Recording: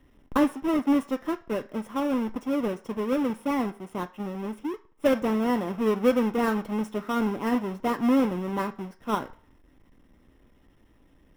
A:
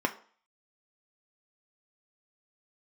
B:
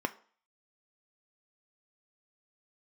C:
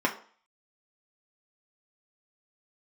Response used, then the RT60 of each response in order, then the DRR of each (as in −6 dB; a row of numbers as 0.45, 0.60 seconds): B; 0.45, 0.45, 0.45 seconds; 4.0, 8.0, −1.0 decibels